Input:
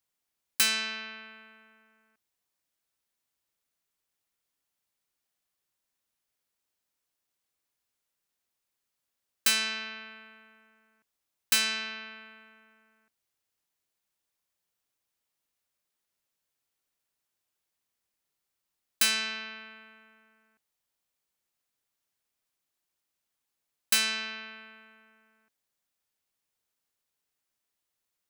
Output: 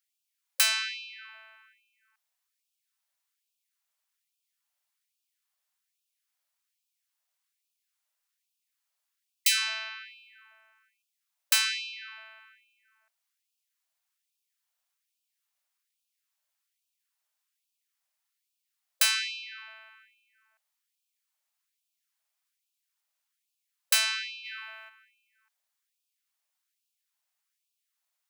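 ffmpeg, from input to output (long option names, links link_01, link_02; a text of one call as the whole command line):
ffmpeg -i in.wav -filter_complex "[0:a]asplit=3[link_01][link_02][link_03];[link_01]afade=type=out:start_time=24.44:duration=0.02[link_04];[link_02]acontrast=66,afade=type=in:start_time=24.44:duration=0.02,afade=type=out:start_time=24.88:duration=0.02[link_05];[link_03]afade=type=in:start_time=24.88:duration=0.02[link_06];[link_04][link_05][link_06]amix=inputs=3:normalize=0,afftfilt=real='re*gte(b*sr/1024,520*pow(2400/520,0.5+0.5*sin(2*PI*1.2*pts/sr)))':imag='im*gte(b*sr/1024,520*pow(2400/520,0.5+0.5*sin(2*PI*1.2*pts/sr)))':win_size=1024:overlap=0.75,volume=1dB" out.wav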